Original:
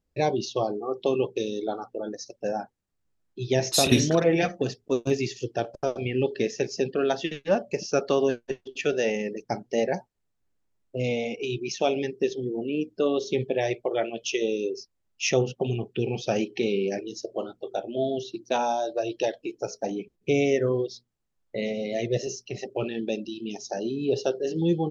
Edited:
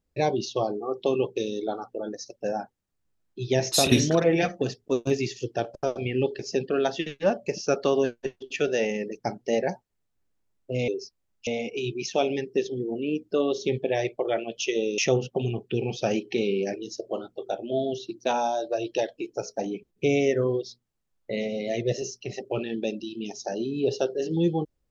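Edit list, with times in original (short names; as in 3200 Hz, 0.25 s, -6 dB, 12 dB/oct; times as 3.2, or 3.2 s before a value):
6.39–6.64 cut
14.64–15.23 move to 11.13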